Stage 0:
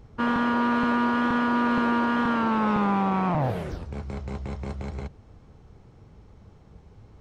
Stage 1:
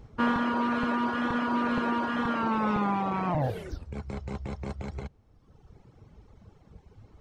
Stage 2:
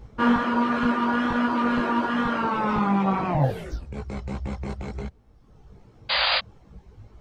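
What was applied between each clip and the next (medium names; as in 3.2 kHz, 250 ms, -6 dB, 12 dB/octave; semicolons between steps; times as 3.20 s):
reverb removal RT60 1.3 s
painted sound noise, 6.09–6.39 s, 510–4900 Hz -26 dBFS; chorus voices 4, 1.2 Hz, delay 18 ms, depth 3 ms; trim +7 dB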